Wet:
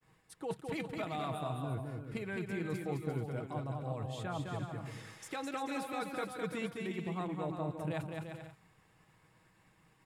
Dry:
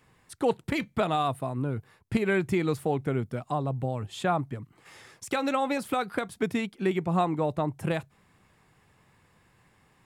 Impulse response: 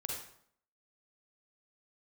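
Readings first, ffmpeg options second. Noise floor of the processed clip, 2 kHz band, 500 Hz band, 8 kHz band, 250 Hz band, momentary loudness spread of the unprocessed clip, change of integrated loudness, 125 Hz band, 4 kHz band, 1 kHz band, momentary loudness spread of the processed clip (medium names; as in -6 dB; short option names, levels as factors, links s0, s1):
-69 dBFS, -9.5 dB, -10.5 dB, -7.5 dB, -10.0 dB, 7 LU, -10.0 dB, -7.0 dB, -9.0 dB, -11.0 dB, 6 LU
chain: -af "agate=range=0.0224:threshold=0.00126:ratio=3:detection=peak,aecho=1:1:6.3:0.39,areverse,acompressor=threshold=0.02:ratio=6,areverse,aecho=1:1:210|346.5|435.2|492.9|530.4:0.631|0.398|0.251|0.158|0.1,volume=0.708"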